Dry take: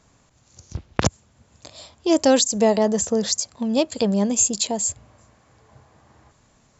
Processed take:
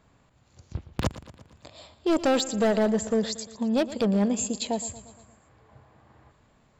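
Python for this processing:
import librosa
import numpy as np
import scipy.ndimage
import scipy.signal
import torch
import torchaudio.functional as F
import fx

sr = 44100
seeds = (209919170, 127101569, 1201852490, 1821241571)

y = fx.peak_eq(x, sr, hz=6100.0, db=-14.5, octaves=0.69)
y = np.clip(y, -10.0 ** (-16.0 / 20.0), 10.0 ** (-16.0 / 20.0))
y = fx.echo_feedback(y, sr, ms=116, feedback_pct=57, wet_db=-16.0)
y = y * 10.0 ** (-2.5 / 20.0)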